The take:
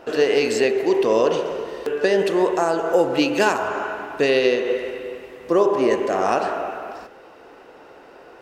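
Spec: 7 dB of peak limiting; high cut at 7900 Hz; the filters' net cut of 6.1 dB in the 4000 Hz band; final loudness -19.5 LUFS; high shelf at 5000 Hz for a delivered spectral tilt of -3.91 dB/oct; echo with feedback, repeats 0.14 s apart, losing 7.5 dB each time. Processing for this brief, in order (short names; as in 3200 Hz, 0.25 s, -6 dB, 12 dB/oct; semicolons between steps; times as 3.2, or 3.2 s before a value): LPF 7900 Hz; bell 4000 Hz -7 dB; high shelf 5000 Hz -4.5 dB; limiter -13 dBFS; feedback echo 0.14 s, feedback 42%, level -7.5 dB; gain +3 dB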